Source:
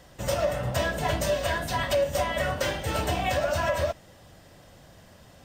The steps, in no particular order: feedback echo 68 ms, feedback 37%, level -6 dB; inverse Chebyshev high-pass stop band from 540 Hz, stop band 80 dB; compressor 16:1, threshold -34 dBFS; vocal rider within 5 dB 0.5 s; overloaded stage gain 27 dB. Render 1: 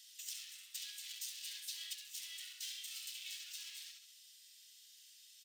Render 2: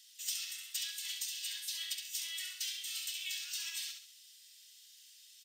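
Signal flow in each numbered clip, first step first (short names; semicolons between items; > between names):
feedback echo > overloaded stage > vocal rider > compressor > inverse Chebyshev high-pass; inverse Chebyshev high-pass > compressor > feedback echo > overloaded stage > vocal rider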